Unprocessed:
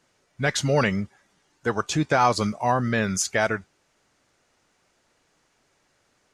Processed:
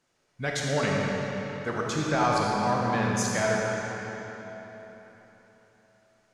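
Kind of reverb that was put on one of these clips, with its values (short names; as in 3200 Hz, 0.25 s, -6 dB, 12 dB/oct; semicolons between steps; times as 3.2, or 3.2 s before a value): digital reverb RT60 3.9 s, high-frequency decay 0.8×, pre-delay 5 ms, DRR -3 dB; gain -7.5 dB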